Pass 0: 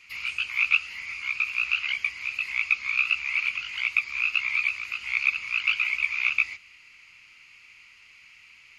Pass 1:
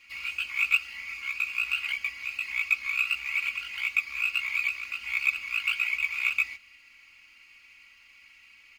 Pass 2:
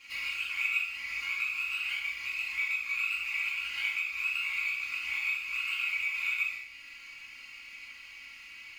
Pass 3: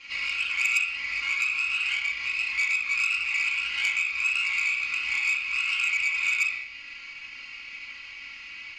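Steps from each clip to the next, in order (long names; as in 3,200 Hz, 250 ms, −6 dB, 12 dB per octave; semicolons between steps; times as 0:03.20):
running median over 5 samples; comb filter 3.6 ms, depth 72%; level −4 dB
downward compressor 2.5 to 1, threshold −41 dBFS, peak gain reduction 15.5 dB; reverb whose tail is shaped and stops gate 270 ms falling, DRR −6 dB
low-pass filter 5,900 Hz 24 dB per octave; saturating transformer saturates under 3,600 Hz; level +7 dB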